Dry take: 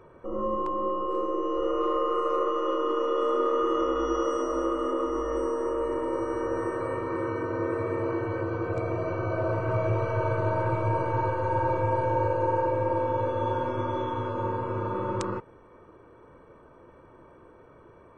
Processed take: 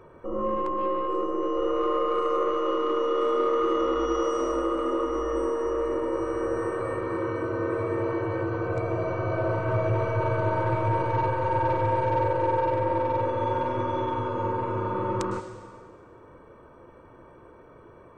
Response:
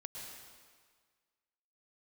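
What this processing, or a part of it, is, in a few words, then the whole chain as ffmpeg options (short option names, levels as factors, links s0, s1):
saturated reverb return: -filter_complex "[0:a]asplit=2[s0][s1];[1:a]atrim=start_sample=2205[s2];[s1][s2]afir=irnorm=-1:irlink=0,asoftclip=type=tanh:threshold=0.0422,volume=0.944[s3];[s0][s3]amix=inputs=2:normalize=0,volume=0.841"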